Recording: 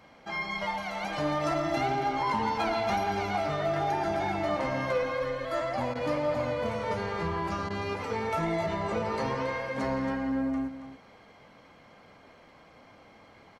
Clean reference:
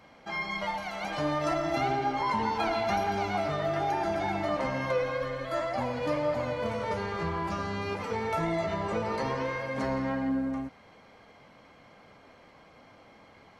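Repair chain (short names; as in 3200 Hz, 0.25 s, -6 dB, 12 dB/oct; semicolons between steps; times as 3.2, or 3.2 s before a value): clip repair -21 dBFS; interpolate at 5.94/7.69, 12 ms; inverse comb 0.277 s -10.5 dB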